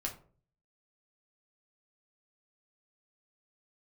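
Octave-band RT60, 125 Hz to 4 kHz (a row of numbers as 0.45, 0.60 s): 0.70, 0.55, 0.50, 0.40, 0.30, 0.20 s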